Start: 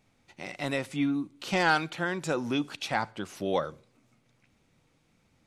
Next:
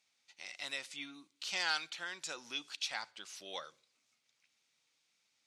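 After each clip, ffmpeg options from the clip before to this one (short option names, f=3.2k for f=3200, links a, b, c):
-af "bandpass=f=5.1k:t=q:w=1.1:csg=0,volume=1dB"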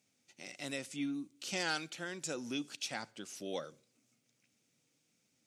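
-af "equalizer=f=125:t=o:w=1:g=10,equalizer=f=250:t=o:w=1:g=9,equalizer=f=500:t=o:w=1:g=3,equalizer=f=1k:t=o:w=1:g=-9,equalizer=f=2k:t=o:w=1:g=-5,equalizer=f=4k:t=o:w=1:g=-10,volume=6dB"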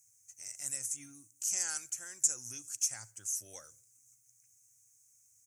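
-af "firequalizer=gain_entry='entry(110,0);entry(160,-27);entry(850,-19);entry(1700,-13);entry(3700,-27);entry(6300,9)':delay=0.05:min_phase=1,volume=6.5dB"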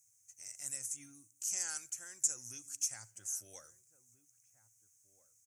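-filter_complex "[0:a]asplit=2[a][b];[b]adelay=1633,volume=-17dB,highshelf=f=4k:g=-36.7[c];[a][c]amix=inputs=2:normalize=0,volume=-3.5dB"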